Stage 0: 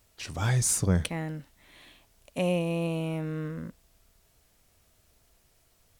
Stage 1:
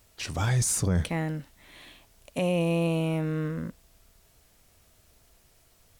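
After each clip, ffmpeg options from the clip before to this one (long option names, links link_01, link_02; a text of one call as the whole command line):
ffmpeg -i in.wav -af "alimiter=limit=-22dB:level=0:latency=1:release=17,volume=4dB" out.wav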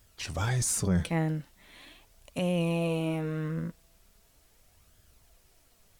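ffmpeg -i in.wav -af "flanger=delay=0.6:depth=5.6:regen=54:speed=0.4:shape=sinusoidal,volume=2dB" out.wav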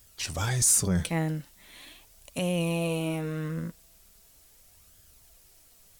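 ffmpeg -i in.wav -af "highshelf=frequency=4300:gain=10" out.wav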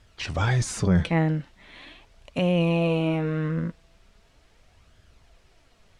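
ffmpeg -i in.wav -af "lowpass=2900,volume=6dB" out.wav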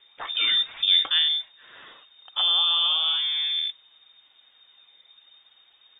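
ffmpeg -i in.wav -af "lowpass=frequency=3100:width_type=q:width=0.5098,lowpass=frequency=3100:width_type=q:width=0.6013,lowpass=frequency=3100:width_type=q:width=0.9,lowpass=frequency=3100:width_type=q:width=2.563,afreqshift=-3700" out.wav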